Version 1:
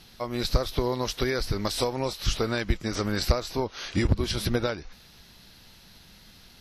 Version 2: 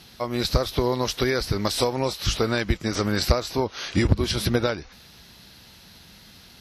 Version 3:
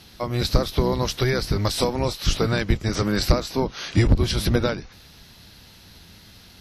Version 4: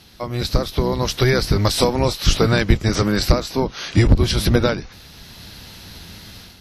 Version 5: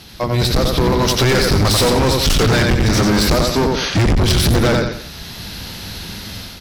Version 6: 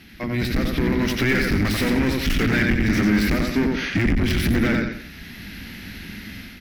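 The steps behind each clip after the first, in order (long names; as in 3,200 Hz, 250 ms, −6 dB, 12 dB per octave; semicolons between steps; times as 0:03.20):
high-pass filter 51 Hz; level +4 dB
sub-octave generator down 1 octave, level +1 dB
automatic gain control gain up to 9 dB
repeating echo 90 ms, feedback 35%, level −5.5 dB; gain into a clipping stage and back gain 19.5 dB; level +8 dB
octave-band graphic EQ 125/250/500/1,000/2,000/4,000/8,000 Hz −5/+9/−7/−9/+11/−7/−10 dB; level −6 dB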